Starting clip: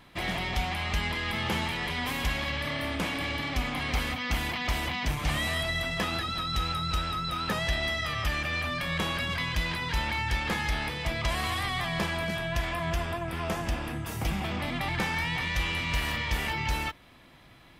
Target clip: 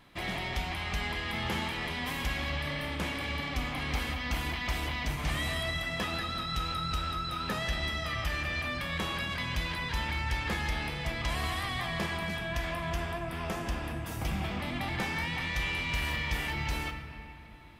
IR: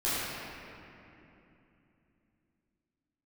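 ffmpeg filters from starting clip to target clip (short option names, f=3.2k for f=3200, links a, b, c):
-filter_complex "[0:a]asplit=2[a][b];[1:a]atrim=start_sample=2205,adelay=14[c];[b][c]afir=irnorm=-1:irlink=0,volume=-17.5dB[d];[a][d]amix=inputs=2:normalize=0,volume=-4dB"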